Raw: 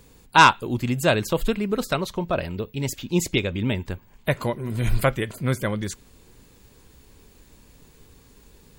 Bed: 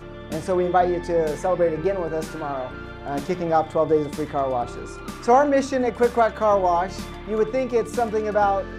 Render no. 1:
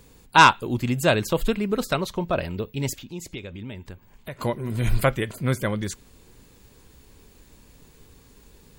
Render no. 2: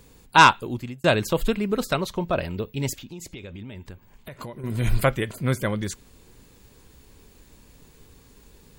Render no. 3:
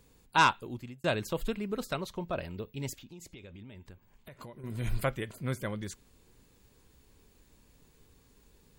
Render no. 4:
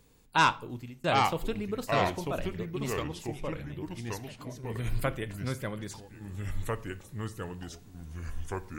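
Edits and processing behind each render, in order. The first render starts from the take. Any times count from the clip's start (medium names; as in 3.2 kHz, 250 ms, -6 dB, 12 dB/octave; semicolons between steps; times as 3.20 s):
2.98–4.39 s: compression 2:1, threshold -42 dBFS
0.55–1.04 s: fade out; 3.11–4.64 s: compression, threshold -33 dBFS
trim -10 dB
simulated room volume 510 m³, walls furnished, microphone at 0.4 m; ever faster or slower copies 693 ms, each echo -3 st, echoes 2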